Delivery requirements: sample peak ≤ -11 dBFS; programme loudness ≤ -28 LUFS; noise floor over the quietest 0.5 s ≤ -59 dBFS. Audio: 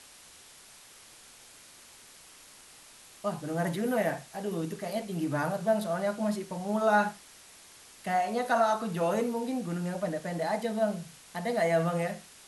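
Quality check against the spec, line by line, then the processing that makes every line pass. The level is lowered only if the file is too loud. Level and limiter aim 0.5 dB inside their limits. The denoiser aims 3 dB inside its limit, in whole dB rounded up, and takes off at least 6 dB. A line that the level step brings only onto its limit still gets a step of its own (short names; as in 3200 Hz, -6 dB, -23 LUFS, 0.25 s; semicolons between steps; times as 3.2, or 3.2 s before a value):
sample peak -13.5 dBFS: OK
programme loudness -30.5 LUFS: OK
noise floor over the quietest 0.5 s -53 dBFS: fail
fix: denoiser 9 dB, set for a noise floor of -53 dBFS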